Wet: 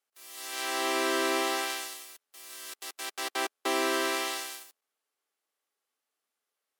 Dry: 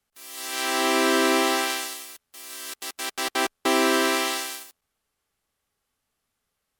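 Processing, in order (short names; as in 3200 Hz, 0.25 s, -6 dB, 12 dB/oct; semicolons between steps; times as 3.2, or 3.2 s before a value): HPF 310 Hz 24 dB/oct; gain -6.5 dB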